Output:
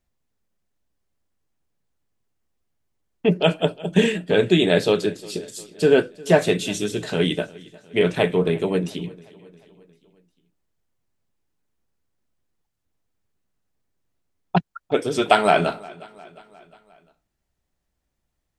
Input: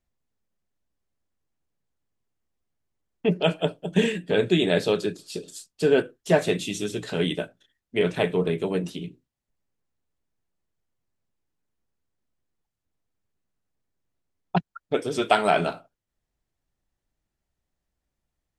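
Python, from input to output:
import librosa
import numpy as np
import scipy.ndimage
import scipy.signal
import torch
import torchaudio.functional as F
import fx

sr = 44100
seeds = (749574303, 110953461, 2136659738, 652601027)

y = fx.echo_feedback(x, sr, ms=355, feedback_pct=56, wet_db=-22.5)
y = y * 10.0 ** (4.0 / 20.0)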